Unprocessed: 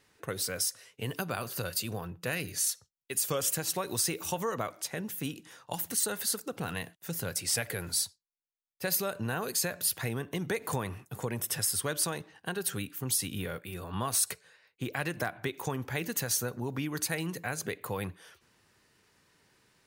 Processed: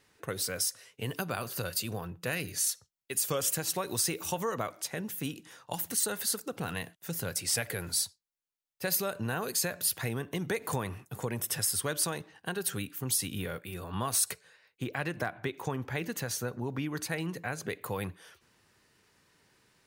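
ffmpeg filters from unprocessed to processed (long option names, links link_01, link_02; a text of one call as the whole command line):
ffmpeg -i in.wav -filter_complex "[0:a]asettb=1/sr,asplit=3[link_01][link_02][link_03];[link_01]atrim=end=14.844[link_04];[link_02]atrim=start=14.84:end=17.7,asetpts=PTS-STARTPTS,afade=type=in:duration=0.004:curve=qsin,afade=type=out:start_time=2.856:duration=0.004:curve=qsin,highshelf=frequency=5300:gain=-9[link_05];[link_03]atrim=start=17.696[link_06];[link_04][link_05]acrossfade=duration=0.004:curve1=hsin:curve2=qsin[link_07];[link_07][link_06]acrossfade=duration=0.004:curve1=qsin:curve2=hsin" out.wav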